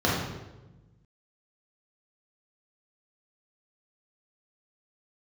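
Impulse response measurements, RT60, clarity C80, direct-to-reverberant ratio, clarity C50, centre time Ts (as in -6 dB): 1.1 s, 3.5 dB, -6.0 dB, 0.5 dB, 67 ms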